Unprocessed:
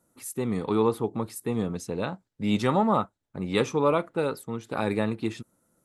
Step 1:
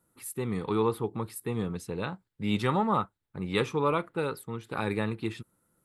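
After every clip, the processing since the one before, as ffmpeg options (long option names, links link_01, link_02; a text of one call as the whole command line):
ffmpeg -i in.wav -af "equalizer=frequency=250:width_type=o:width=0.67:gain=-6,equalizer=frequency=630:width_type=o:width=0.67:gain=-8,equalizer=frequency=6300:width_type=o:width=0.67:gain=-9" out.wav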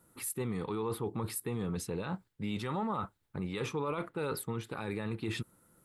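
ffmpeg -i in.wav -af "areverse,acompressor=threshold=-34dB:ratio=12,areverse,alimiter=level_in=9dB:limit=-24dB:level=0:latency=1:release=20,volume=-9dB,volume=6.5dB" out.wav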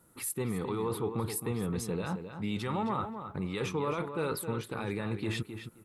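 ffmpeg -i in.wav -filter_complex "[0:a]asplit=2[link_01][link_02];[link_02]adelay=264,lowpass=frequency=3900:poles=1,volume=-8.5dB,asplit=2[link_03][link_04];[link_04]adelay=264,lowpass=frequency=3900:poles=1,volume=0.17,asplit=2[link_05][link_06];[link_06]adelay=264,lowpass=frequency=3900:poles=1,volume=0.17[link_07];[link_01][link_03][link_05][link_07]amix=inputs=4:normalize=0,volume=2dB" out.wav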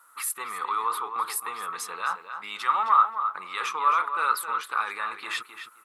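ffmpeg -i in.wav -af "highpass=frequency=1200:width_type=q:width=4.9,volume=5.5dB" out.wav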